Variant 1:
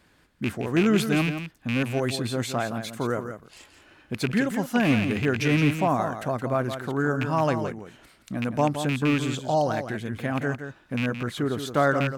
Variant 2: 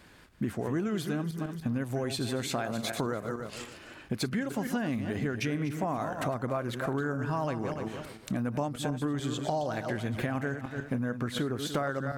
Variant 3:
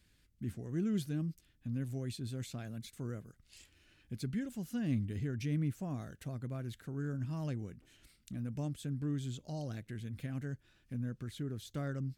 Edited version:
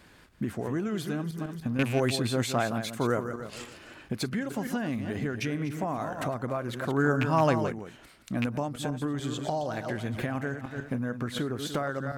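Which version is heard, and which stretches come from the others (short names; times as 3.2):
2
1.79–3.33 from 1
6.85–8.46 from 1
not used: 3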